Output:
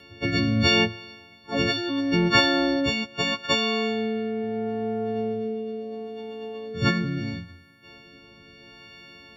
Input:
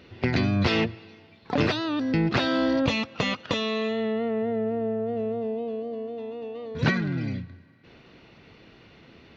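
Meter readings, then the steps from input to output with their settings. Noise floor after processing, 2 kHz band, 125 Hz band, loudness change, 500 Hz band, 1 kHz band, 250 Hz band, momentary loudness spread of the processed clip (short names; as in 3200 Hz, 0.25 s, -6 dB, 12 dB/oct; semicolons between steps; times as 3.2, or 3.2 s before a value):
-51 dBFS, +4.0 dB, -0.5 dB, +2.5 dB, 0.0 dB, +2.5 dB, +0.5 dB, 16 LU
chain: frequency quantiser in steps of 4 st; rotary speaker horn 0.75 Hz; gain +2 dB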